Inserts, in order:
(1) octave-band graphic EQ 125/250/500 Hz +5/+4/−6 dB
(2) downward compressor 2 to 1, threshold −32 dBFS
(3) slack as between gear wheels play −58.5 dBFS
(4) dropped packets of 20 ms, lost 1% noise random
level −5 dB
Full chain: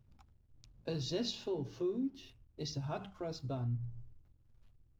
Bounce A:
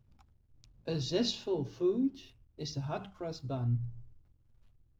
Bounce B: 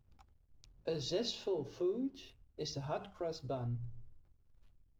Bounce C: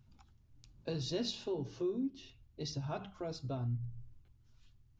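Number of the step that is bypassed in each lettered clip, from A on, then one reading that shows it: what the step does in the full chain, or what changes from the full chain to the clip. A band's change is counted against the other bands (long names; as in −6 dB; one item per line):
2, change in integrated loudness +4.5 LU
1, change in crest factor +2.5 dB
3, distortion level −30 dB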